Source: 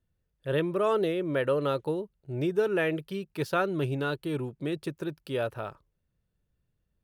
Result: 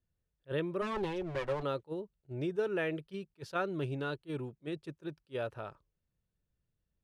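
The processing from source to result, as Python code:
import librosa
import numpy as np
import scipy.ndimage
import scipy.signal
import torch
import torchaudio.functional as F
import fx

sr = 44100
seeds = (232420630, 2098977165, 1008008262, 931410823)

y = fx.lower_of_two(x, sr, delay_ms=5.4, at=(0.81, 1.62), fade=0.02)
y = scipy.signal.sosfilt(scipy.signal.butter(2, 8100.0, 'lowpass', fs=sr, output='sos'), y)
y = fx.attack_slew(y, sr, db_per_s=510.0)
y = y * librosa.db_to_amplitude(-6.5)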